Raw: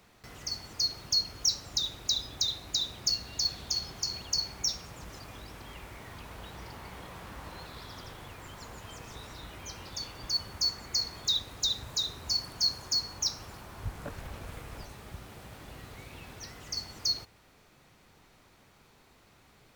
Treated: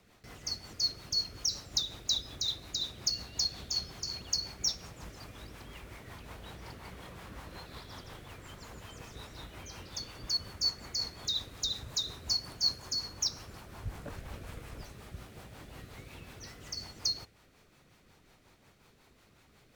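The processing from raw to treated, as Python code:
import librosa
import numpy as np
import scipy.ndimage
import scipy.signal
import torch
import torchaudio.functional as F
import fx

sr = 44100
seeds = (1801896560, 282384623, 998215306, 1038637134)

y = fx.rotary(x, sr, hz=5.5)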